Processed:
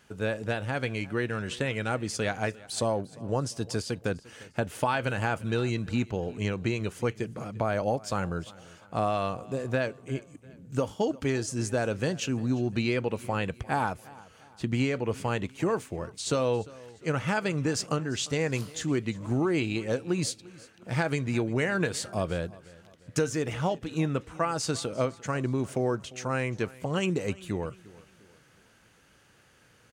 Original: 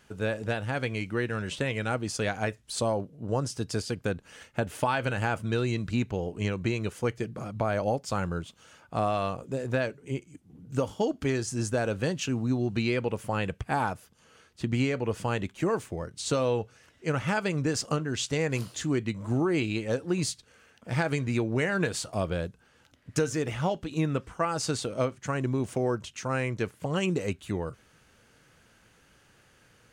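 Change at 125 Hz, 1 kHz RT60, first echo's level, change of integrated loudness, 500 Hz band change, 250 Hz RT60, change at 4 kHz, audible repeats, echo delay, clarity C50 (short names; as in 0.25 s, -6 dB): -0.5 dB, none, -21.0 dB, 0.0 dB, 0.0 dB, none, 0.0 dB, 2, 0.349 s, none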